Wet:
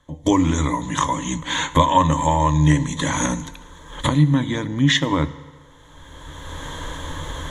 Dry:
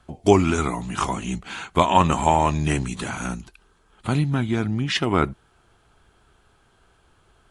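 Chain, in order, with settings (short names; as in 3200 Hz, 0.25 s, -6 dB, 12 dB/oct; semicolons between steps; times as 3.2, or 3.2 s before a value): recorder AGC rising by 21 dB/s; ripple EQ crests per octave 1.1, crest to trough 15 dB; FDN reverb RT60 1.6 s, low-frequency decay 0.75×, high-frequency decay 0.75×, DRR 14 dB; gain -3.5 dB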